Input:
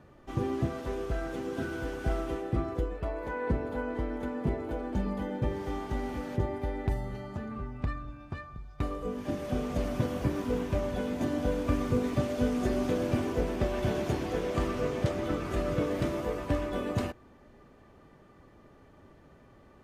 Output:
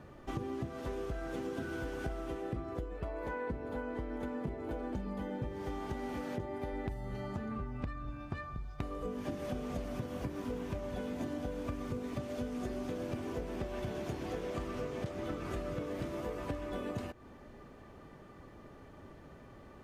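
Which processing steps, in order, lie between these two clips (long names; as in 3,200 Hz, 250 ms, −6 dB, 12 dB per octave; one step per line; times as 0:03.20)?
0:05.93–0:06.73: low-shelf EQ 75 Hz −11 dB
downward compressor 10 to 1, threshold −38 dBFS, peak gain reduction 16.5 dB
level +3 dB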